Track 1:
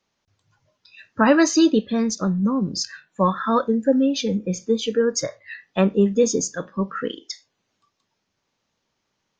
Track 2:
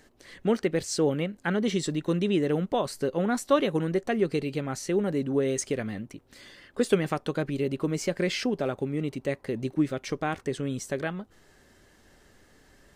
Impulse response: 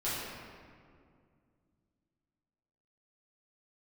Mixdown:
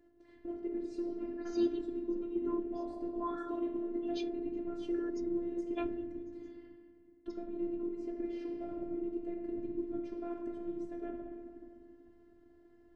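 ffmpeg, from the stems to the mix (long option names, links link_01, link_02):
-filter_complex "[0:a]lowpass=4000,aeval=exprs='val(0)*pow(10,-28*(0.5-0.5*cos(2*PI*1.2*n/s))/20)':channel_layout=same,volume=-13.5dB[link_01];[1:a]acrusher=bits=6:mode=log:mix=0:aa=0.000001,bandpass=frequency=180:width_type=q:width=1.3:csg=0,acompressor=threshold=-40dB:ratio=3,volume=2.5dB,asplit=3[link_02][link_03][link_04];[link_02]atrim=end=6.7,asetpts=PTS-STARTPTS,afade=type=out:start_time=6.696:duration=0.004:curve=hsin[link_05];[link_03]atrim=start=6.7:end=7.25,asetpts=PTS-STARTPTS,volume=0[link_06];[link_04]atrim=start=7.25,asetpts=PTS-STARTPTS,afade=type=in:duration=0.004:curve=hsin[link_07];[link_05][link_06][link_07]concat=n=3:v=0:a=1,asplit=3[link_08][link_09][link_10];[link_09]volume=-4.5dB[link_11];[link_10]apad=whole_len=414230[link_12];[link_01][link_12]sidechaingate=range=-33dB:threshold=-56dB:ratio=16:detection=peak[link_13];[2:a]atrim=start_sample=2205[link_14];[link_11][link_14]afir=irnorm=-1:irlink=0[link_15];[link_13][link_08][link_15]amix=inputs=3:normalize=0,afftfilt=real='hypot(re,im)*cos(PI*b)':imag='0':win_size=512:overlap=0.75"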